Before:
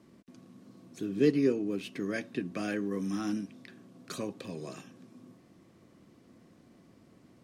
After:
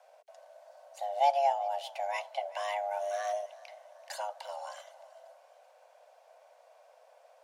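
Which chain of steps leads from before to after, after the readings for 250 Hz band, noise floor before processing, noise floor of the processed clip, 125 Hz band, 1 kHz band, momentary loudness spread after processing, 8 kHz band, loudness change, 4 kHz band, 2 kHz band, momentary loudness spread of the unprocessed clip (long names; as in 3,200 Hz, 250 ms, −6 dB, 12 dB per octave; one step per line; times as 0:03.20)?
below −40 dB, −61 dBFS, −62 dBFS, below −40 dB, +18.0 dB, 22 LU, 0.0 dB, −0.5 dB, +2.5 dB, −1.0 dB, 21 LU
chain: frequency shifter +410 Hz
feedback echo with a high-pass in the loop 384 ms, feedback 48%, level −20.5 dB
level −1 dB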